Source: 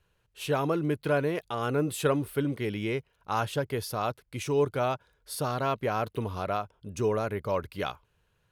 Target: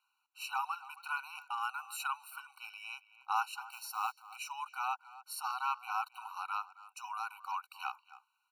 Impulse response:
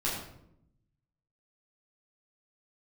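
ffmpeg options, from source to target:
-filter_complex "[0:a]asplit=2[a][b];[b]adelay=270,highpass=300,lowpass=3.4k,asoftclip=type=hard:threshold=-23dB,volume=-16dB[c];[a][c]amix=inputs=2:normalize=0,asettb=1/sr,asplit=3[d][e][f];[d]atrim=end=3.714[g];[e]atrim=start=3.71:end=4.36,asetpts=PTS-STARTPTS,afade=t=in:d=0.004:c=qsin,afade=t=out:st=0.646:d=0.004:c=qsin,acrusher=bits=5:mode=log:mix=0:aa=0.000001[h];[f]atrim=start=4.356[i];[g][h]acrossfade=d=0.004:c1=hsin:c2=qsin[j];[j][i]acrossfade=d=0.004:c1=qsin:c2=hsin,afftfilt=real='re*eq(mod(floor(b*sr/1024/760),2),1)':imag='im*eq(mod(floor(b*sr/1024/760),2),1)':win_size=1024:overlap=0.75,volume=-2dB"

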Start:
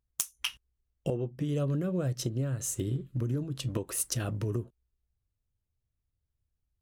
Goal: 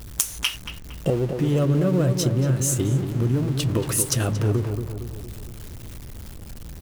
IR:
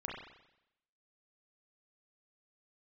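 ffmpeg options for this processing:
-filter_complex "[0:a]aeval=exprs='val(0)+0.5*0.0106*sgn(val(0))':c=same,asplit=2[a][b];[b]adelay=230,lowpass=f=1.7k:p=1,volume=-6.5dB,asplit=2[c][d];[d]adelay=230,lowpass=f=1.7k:p=1,volume=0.54,asplit=2[e][f];[f]adelay=230,lowpass=f=1.7k:p=1,volume=0.54,asplit=2[g][h];[h]adelay=230,lowpass=f=1.7k:p=1,volume=0.54,asplit=2[i][j];[j]adelay=230,lowpass=f=1.7k:p=1,volume=0.54,asplit=2[k][l];[l]adelay=230,lowpass=f=1.7k:p=1,volume=0.54,asplit=2[m][n];[n]adelay=230,lowpass=f=1.7k:p=1,volume=0.54[o];[a][c][e][g][i][k][m][o]amix=inputs=8:normalize=0,volume=8dB"

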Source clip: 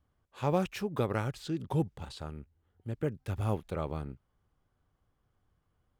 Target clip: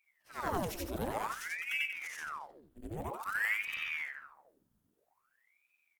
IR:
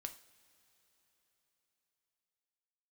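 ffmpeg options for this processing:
-filter_complex "[0:a]afftfilt=real='re':imag='-im':win_size=8192:overlap=0.75,bandreject=f=50:t=h:w=6,bandreject=f=100:t=h:w=6,bandreject=f=150:t=h:w=6,bandreject=f=200:t=h:w=6,bandreject=f=250:t=h:w=6,bandreject=f=300:t=h:w=6,bandreject=f=350:t=h:w=6,acrossover=split=320[a][b];[a]acontrast=46[c];[c][b]amix=inputs=2:normalize=0,flanger=delay=9.2:depth=4.3:regen=-87:speed=1.8:shape=triangular,equalizer=f=67:t=o:w=0.68:g=6.5,crystalizer=i=1.5:c=0,aemphasis=mode=production:type=cd,asplit=2[d][e];[e]adelay=221,lowpass=f=3k:p=1,volume=-16dB,asplit=2[f][g];[g]adelay=221,lowpass=f=3k:p=1,volume=0.17[h];[f][h]amix=inputs=2:normalize=0[i];[d][i]amix=inputs=2:normalize=0,aeval=exprs='val(0)*sin(2*PI*1300*n/s+1300*0.9/0.51*sin(2*PI*0.51*n/s))':c=same,volume=3dB"

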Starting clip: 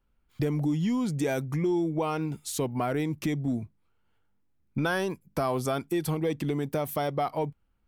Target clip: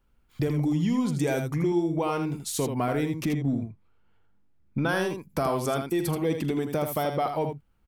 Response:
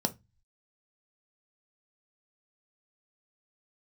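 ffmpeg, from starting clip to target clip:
-filter_complex "[0:a]asettb=1/sr,asplit=3[a][b][c];[a]atrim=end=3.254[d];[b]atrim=start=3.25:end=4.89,asetpts=PTS-STARTPTS,afade=t=in:d=0.004:c=qsin,afade=t=out:st=1.636:d=0.004:c=qsin,lowpass=f=2.8k:p=1[e];[c]atrim=start=4.886[f];[d][e]acrossfade=d=0.004:c1=hsin:c2=qsin[g];[g][f]acrossfade=d=0.004:c1=qsin:c2=hsin,asplit=2[h][i];[i]acompressor=threshold=-41dB:ratio=6,volume=-3dB[j];[h][j]amix=inputs=2:normalize=0,aecho=1:1:43|80:0.126|0.447"

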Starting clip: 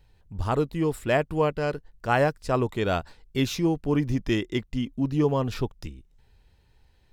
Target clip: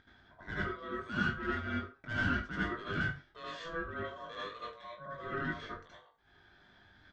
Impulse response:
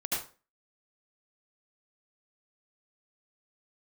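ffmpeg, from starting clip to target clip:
-filter_complex "[0:a]acompressor=mode=upward:threshold=-25dB:ratio=2.5,asplit=3[a][b][c];[a]bandpass=f=730:t=q:w=8,volume=0dB[d];[b]bandpass=f=1.09k:t=q:w=8,volume=-6dB[e];[c]bandpass=f=2.44k:t=q:w=8,volume=-9dB[f];[d][e][f]amix=inputs=3:normalize=0,aresample=16000,asoftclip=type=tanh:threshold=-31.5dB,aresample=44100,aeval=exprs='val(0)*sin(2*PI*830*n/s)':c=same,asplit=2[g][h];[h]adelay=20,volume=-6dB[i];[g][i]amix=inputs=2:normalize=0[j];[1:a]atrim=start_sample=2205,afade=t=out:st=0.29:d=0.01,atrim=end_sample=13230[k];[j][k]afir=irnorm=-1:irlink=0"

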